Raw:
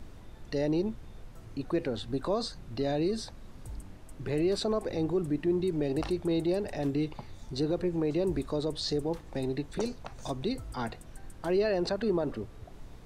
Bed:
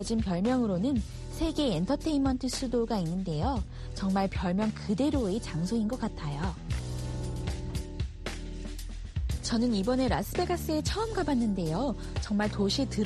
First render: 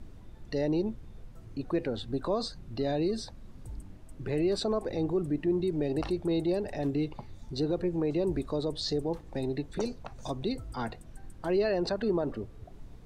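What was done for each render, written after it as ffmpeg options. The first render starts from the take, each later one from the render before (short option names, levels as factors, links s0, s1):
-af "afftdn=nr=6:nf=-49"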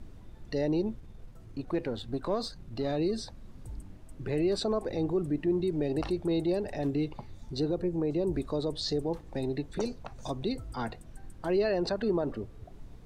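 -filter_complex "[0:a]asettb=1/sr,asplit=3[s0][s1][s2];[s0]atrim=end=1.004[s3];[s1]atrim=start=1:end=2.97,asetpts=PTS-STARTPTS,afade=t=in:d=0.004:c=qsin,afade=t=out:st=1.966:d=0.004:c=qsin,aeval=exprs='if(lt(val(0),0),0.708*val(0),val(0))':c=same[s4];[s2]atrim=start=2.966[s5];[s3][s4]acrossfade=d=0.004:c1=hsin:c2=qsin[s6];[s6][s5]acrossfade=d=0.004:c1=qsin:c2=hsin,asettb=1/sr,asplit=3[s7][s8][s9];[s7]atrim=end=7.694[s10];[s8]atrim=start=7.69:end=8.34,asetpts=PTS-STARTPTS,afade=t=in:d=0.004:c=qsin,afade=t=out:st=0.646:d=0.004:c=qsin,equalizer=f=2400:t=o:w=2.7:g=-5[s11];[s9]atrim=start=8.336[s12];[s10][s11]acrossfade=d=0.004:c1=hsin:c2=qsin[s13];[s13][s12]acrossfade=d=0.004:c1=qsin:c2=hsin"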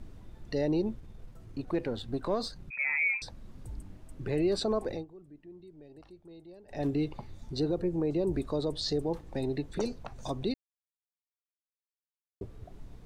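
-filter_complex "[0:a]asettb=1/sr,asplit=3[s0][s1][s2];[s0]atrim=end=2.704[s3];[s1]atrim=start=2.7:end=3.22,asetpts=PTS-STARTPTS,afade=t=in:d=0.004:c=qsin,afade=t=out:st=0.516:d=0.004:c=qsin,lowpass=f=2200:t=q:w=0.5098,lowpass=f=2200:t=q:w=0.6013,lowpass=f=2200:t=q:w=0.9,lowpass=f=2200:t=q:w=2.563,afreqshift=-2600[s4];[s2]atrim=start=3.216[s5];[s3][s4]acrossfade=d=0.004:c1=hsin:c2=qsin[s6];[s6][s5]acrossfade=d=0.004:c1=qsin:c2=hsin,asplit=5[s7][s8][s9][s10][s11];[s7]atrim=end=5.05,asetpts=PTS-STARTPTS,afade=t=out:st=4.91:d=0.14:silence=0.0794328[s12];[s8]atrim=start=5.05:end=6.67,asetpts=PTS-STARTPTS,volume=0.0794[s13];[s9]atrim=start=6.67:end=10.54,asetpts=PTS-STARTPTS,afade=t=in:d=0.14:silence=0.0794328,afade=t=out:st=3.866:d=0.004:c=hsin[s14];[s10]atrim=start=10.54:end=12.41,asetpts=PTS-STARTPTS,volume=0[s15];[s11]atrim=start=12.41,asetpts=PTS-STARTPTS,afade=t=in:d=0.004:c=hsin[s16];[s12][s13][s14][s15][s16]concat=n=5:v=0:a=1"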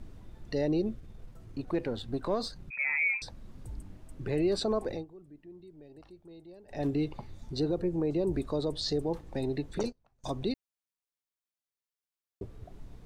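-filter_complex "[0:a]asettb=1/sr,asplit=3[s0][s1][s2];[s0]atrim=end=0.674[s3];[s1]atrim=start=0.67:end=1.1,asetpts=PTS-STARTPTS,afade=t=in:d=0.004:c=qsin,afade=t=out:st=0.426:d=0.004:c=qsin,asuperstop=centerf=920:order=4:qfactor=4.1[s4];[s2]atrim=start=1.096[s5];[s3][s4]acrossfade=d=0.004:c1=hsin:c2=qsin[s6];[s6][s5]acrossfade=d=0.004:c1=qsin:c2=hsin,asettb=1/sr,asplit=3[s7][s8][s9];[s7]atrim=end=9.834[s10];[s8]atrim=start=9.83:end=10.24,asetpts=PTS-STARTPTS,afade=t=in:d=0.004:c=qsin,afade=t=out:st=0.406:d=0.004:c=qsin,agate=range=0.0447:threshold=0.0178:ratio=16:release=100:detection=peak[s11];[s9]atrim=start=10.236[s12];[s10][s11]acrossfade=d=0.004:c1=hsin:c2=qsin[s13];[s13][s12]acrossfade=d=0.004:c1=qsin:c2=hsin"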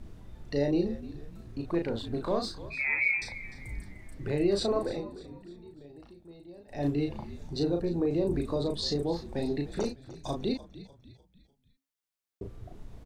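-filter_complex "[0:a]asplit=2[s0][s1];[s1]adelay=35,volume=0.631[s2];[s0][s2]amix=inputs=2:normalize=0,asplit=5[s3][s4][s5][s6][s7];[s4]adelay=299,afreqshift=-68,volume=0.158[s8];[s5]adelay=598,afreqshift=-136,volume=0.07[s9];[s6]adelay=897,afreqshift=-204,volume=0.0305[s10];[s7]adelay=1196,afreqshift=-272,volume=0.0135[s11];[s3][s8][s9][s10][s11]amix=inputs=5:normalize=0"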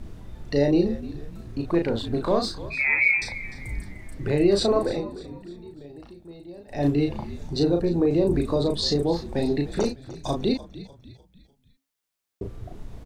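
-af "volume=2.24"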